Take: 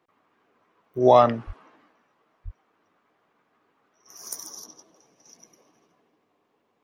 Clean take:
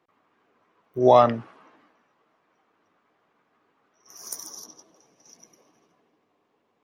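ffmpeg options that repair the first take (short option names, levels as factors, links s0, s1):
-filter_complex "[0:a]asplit=3[s0][s1][s2];[s0]afade=t=out:st=1.46:d=0.02[s3];[s1]highpass=f=140:w=0.5412,highpass=f=140:w=1.3066,afade=t=in:st=1.46:d=0.02,afade=t=out:st=1.58:d=0.02[s4];[s2]afade=t=in:st=1.58:d=0.02[s5];[s3][s4][s5]amix=inputs=3:normalize=0,asplit=3[s6][s7][s8];[s6]afade=t=out:st=2.44:d=0.02[s9];[s7]highpass=f=140:w=0.5412,highpass=f=140:w=1.3066,afade=t=in:st=2.44:d=0.02,afade=t=out:st=2.56:d=0.02[s10];[s8]afade=t=in:st=2.56:d=0.02[s11];[s9][s10][s11]amix=inputs=3:normalize=0"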